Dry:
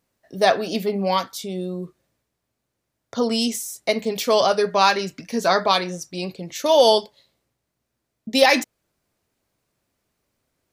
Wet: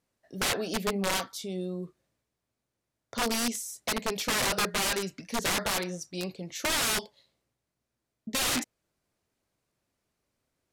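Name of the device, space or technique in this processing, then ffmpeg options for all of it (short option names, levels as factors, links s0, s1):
overflowing digital effects unit: -af "aeval=exprs='(mod(6.31*val(0)+1,2)-1)/6.31':c=same,lowpass=13000,volume=0.501"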